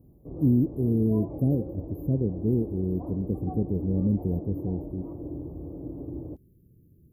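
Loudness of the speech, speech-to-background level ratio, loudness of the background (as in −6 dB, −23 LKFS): −27.5 LKFS, 10.5 dB, −38.0 LKFS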